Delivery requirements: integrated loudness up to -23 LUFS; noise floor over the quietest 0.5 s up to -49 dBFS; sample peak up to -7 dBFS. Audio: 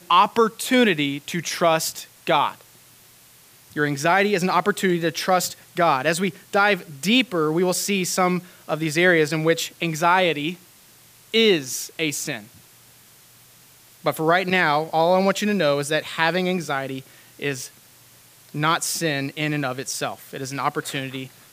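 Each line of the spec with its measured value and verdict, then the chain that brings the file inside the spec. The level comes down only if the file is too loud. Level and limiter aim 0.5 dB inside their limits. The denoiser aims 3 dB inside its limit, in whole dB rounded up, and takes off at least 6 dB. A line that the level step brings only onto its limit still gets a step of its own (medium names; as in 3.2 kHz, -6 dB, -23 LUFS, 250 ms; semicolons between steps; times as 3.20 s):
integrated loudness -21.5 LUFS: fail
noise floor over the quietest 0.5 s -51 dBFS: pass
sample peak -5.5 dBFS: fail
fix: trim -2 dB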